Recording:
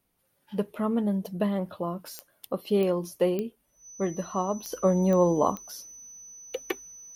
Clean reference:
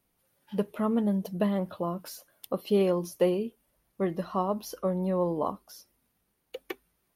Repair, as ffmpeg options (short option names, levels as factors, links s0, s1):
-af "adeclick=t=4,bandreject=f=6000:w=30,asetnsamples=n=441:p=0,asendcmd='4.72 volume volume -6dB',volume=1"